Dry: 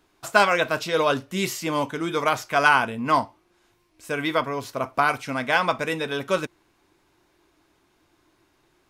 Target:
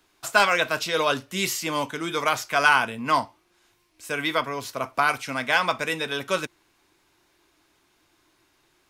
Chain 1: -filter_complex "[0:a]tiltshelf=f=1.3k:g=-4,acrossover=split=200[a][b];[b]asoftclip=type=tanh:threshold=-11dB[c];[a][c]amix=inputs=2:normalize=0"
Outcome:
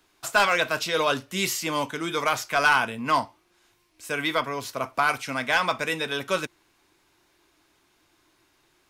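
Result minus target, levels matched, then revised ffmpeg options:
soft clip: distortion +9 dB
-filter_complex "[0:a]tiltshelf=f=1.3k:g=-4,acrossover=split=200[a][b];[b]asoftclip=type=tanh:threshold=-4dB[c];[a][c]amix=inputs=2:normalize=0"

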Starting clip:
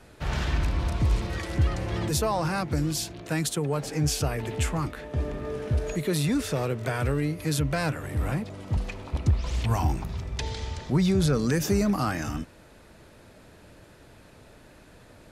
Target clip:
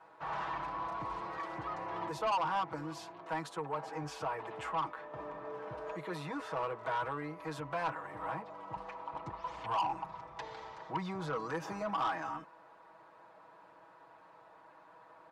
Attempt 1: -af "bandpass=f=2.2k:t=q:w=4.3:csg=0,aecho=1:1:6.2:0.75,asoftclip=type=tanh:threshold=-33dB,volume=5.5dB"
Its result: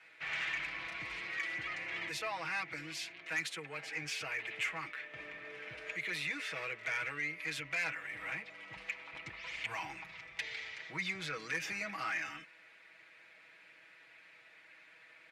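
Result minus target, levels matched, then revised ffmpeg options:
1000 Hz band -11.0 dB
-af "bandpass=f=980:t=q:w=4.3:csg=0,aecho=1:1:6.2:0.75,asoftclip=type=tanh:threshold=-33dB,volume=5.5dB"

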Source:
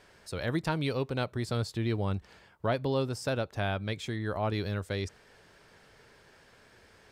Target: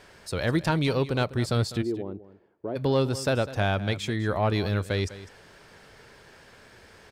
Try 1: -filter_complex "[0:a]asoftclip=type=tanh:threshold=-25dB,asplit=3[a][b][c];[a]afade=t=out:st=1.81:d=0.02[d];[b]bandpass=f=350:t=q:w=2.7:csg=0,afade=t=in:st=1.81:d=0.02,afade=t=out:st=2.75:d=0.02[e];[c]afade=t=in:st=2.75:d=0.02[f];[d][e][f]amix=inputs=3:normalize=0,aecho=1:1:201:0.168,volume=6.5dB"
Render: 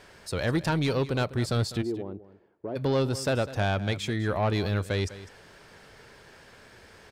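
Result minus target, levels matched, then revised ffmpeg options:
soft clip: distortion +10 dB
-filter_complex "[0:a]asoftclip=type=tanh:threshold=-18.5dB,asplit=3[a][b][c];[a]afade=t=out:st=1.81:d=0.02[d];[b]bandpass=f=350:t=q:w=2.7:csg=0,afade=t=in:st=1.81:d=0.02,afade=t=out:st=2.75:d=0.02[e];[c]afade=t=in:st=2.75:d=0.02[f];[d][e][f]amix=inputs=3:normalize=0,aecho=1:1:201:0.168,volume=6.5dB"

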